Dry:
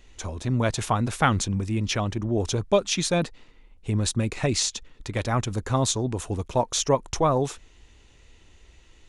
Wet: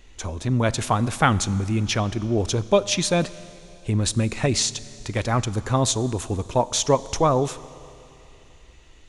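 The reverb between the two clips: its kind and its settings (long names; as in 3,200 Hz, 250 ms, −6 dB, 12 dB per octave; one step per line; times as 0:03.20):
four-comb reverb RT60 3 s, combs from 28 ms, DRR 17 dB
level +2.5 dB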